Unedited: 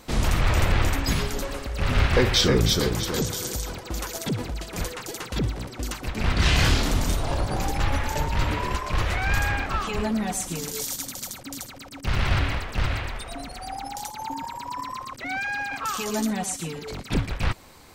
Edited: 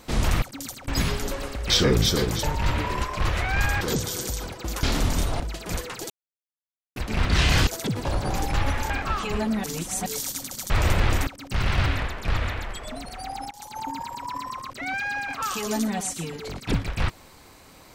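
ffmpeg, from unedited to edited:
ffmpeg -i in.wav -filter_complex "[0:a]asplit=20[link_01][link_02][link_03][link_04][link_05][link_06][link_07][link_08][link_09][link_10][link_11][link_12][link_13][link_14][link_15][link_16][link_17][link_18][link_19][link_20];[link_01]atrim=end=0.422[link_21];[link_02]atrim=start=11.338:end=11.802[link_22];[link_03]atrim=start=0.988:end=1.802[link_23];[link_04]atrim=start=2.328:end=3.072[link_24];[link_05]atrim=start=8.158:end=9.542[link_25];[link_06]atrim=start=3.068:end=4.092[link_26];[link_07]atrim=start=6.738:end=7.312[link_27];[link_08]atrim=start=4.468:end=5.17,asetpts=PTS-STARTPTS,afade=type=out:start_time=0.698:duration=0.004:curve=hsin[link_28];[link_09]atrim=start=5.17:end=6.03,asetpts=PTS-STARTPTS,volume=0[link_29];[link_10]atrim=start=6.03:end=6.742,asetpts=PTS-STARTPTS,afade=type=in:duration=0.004:curve=hsin[link_30];[link_11]atrim=start=4.088:end=4.472[link_31];[link_12]atrim=start=7.308:end=8.162[link_32];[link_13]atrim=start=9.538:end=10.282[link_33];[link_14]atrim=start=10.278:end=10.702,asetpts=PTS-STARTPTS,areverse[link_34];[link_15]atrim=start=10.698:end=11.342[link_35];[link_16]atrim=start=0.418:end=0.992[link_36];[link_17]atrim=start=11.798:end=12.494[link_37];[link_18]atrim=start=12.49:end=13.39,asetpts=PTS-STARTPTS,asetrate=39690,aresample=44100[link_38];[link_19]atrim=start=13.386:end=13.94,asetpts=PTS-STARTPTS,afade=type=out:start_time=0.55:duration=0.004:curve=hsin:silence=0.0794328[link_39];[link_20]atrim=start=13.94,asetpts=PTS-STARTPTS,afade=type=in:duration=0.27:silence=0.0794328[link_40];[link_21][link_22]acrossfade=duration=0.004:curve1=hsin:curve2=hsin[link_41];[link_41][link_23]acrossfade=duration=0.004:curve1=hsin:curve2=hsin[link_42];[link_42][link_24]acrossfade=duration=0.004:curve1=hsin:curve2=hsin[link_43];[link_43][link_25]acrossfade=duration=0.004:curve1=hsin:curve2=hsin[link_44];[link_44][link_26]acrossfade=duration=0.004:curve1=hsin:curve2=hsin[link_45];[link_45][link_27]acrossfade=duration=0.004:curve1=hsin:curve2=hsin[link_46];[link_28][link_29][link_30]concat=n=3:v=0:a=1[link_47];[link_46][link_47]acrossfade=duration=0.004:curve1=hsin:curve2=hsin[link_48];[link_48][link_31]acrossfade=duration=0.004:curve1=hsin:curve2=hsin[link_49];[link_49][link_32]acrossfade=duration=0.004:curve1=hsin:curve2=hsin[link_50];[link_50][link_33]acrossfade=duration=0.004:curve1=hsin:curve2=hsin[link_51];[link_51][link_34]acrossfade=duration=0.004:curve1=hsin:curve2=hsin[link_52];[link_52][link_35]acrossfade=duration=0.004:curve1=hsin:curve2=hsin[link_53];[link_53][link_36]acrossfade=duration=0.004:curve1=hsin:curve2=hsin[link_54];[link_54][link_37]acrossfade=duration=0.004:curve1=hsin:curve2=hsin[link_55];[link_55][link_38]acrossfade=duration=0.004:curve1=hsin:curve2=hsin[link_56];[link_39][link_40]concat=n=2:v=0:a=1[link_57];[link_56][link_57]acrossfade=duration=0.004:curve1=hsin:curve2=hsin" out.wav

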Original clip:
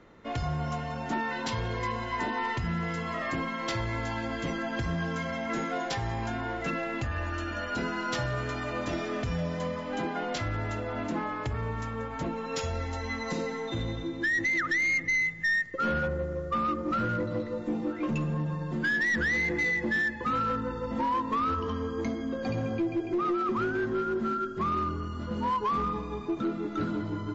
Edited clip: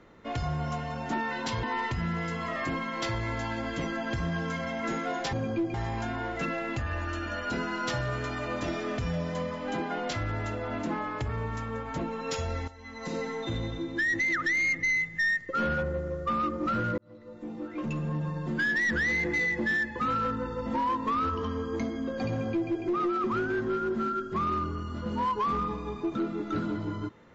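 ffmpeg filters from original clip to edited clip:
ffmpeg -i in.wav -filter_complex "[0:a]asplit=6[link_01][link_02][link_03][link_04][link_05][link_06];[link_01]atrim=end=1.632[link_07];[link_02]atrim=start=2.288:end=5.992[link_08];[link_03]atrim=start=22.548:end=22.962[link_09];[link_04]atrim=start=5.988:end=12.93,asetpts=PTS-STARTPTS,afade=type=out:start_time=6.938:duration=0.004:curve=hsin:silence=0.158489[link_10];[link_05]atrim=start=12.93:end=17.23,asetpts=PTS-STARTPTS,afade=type=in:duration=0.51:curve=qua:silence=0.158489,afade=type=out:start_time=4.296:duration=0.004:curve=hsin[link_11];[link_06]atrim=start=17.23,asetpts=PTS-STARTPTS,afade=type=in:duration=1.27[link_12];[link_07][link_08]acrossfade=duration=0.004:curve1=hsin:curve2=hsin[link_13];[link_13][link_09]acrossfade=duration=0.004:curve1=hsin:curve2=hsin[link_14];[link_10][link_11][link_12]concat=n=3:v=0:a=1[link_15];[link_14][link_15]acrossfade=duration=0.004:curve1=hsin:curve2=hsin" out.wav

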